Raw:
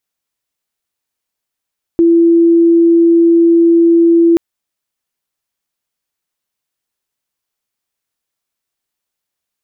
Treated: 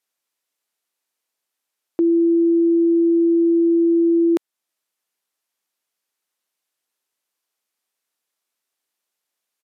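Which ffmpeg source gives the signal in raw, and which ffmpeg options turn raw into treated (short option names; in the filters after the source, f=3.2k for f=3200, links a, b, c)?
-f lavfi -i "aevalsrc='0.562*sin(2*PI*336*t)':d=2.38:s=44100"
-af "highpass=280,alimiter=limit=-12.5dB:level=0:latency=1:release=328,aresample=32000,aresample=44100"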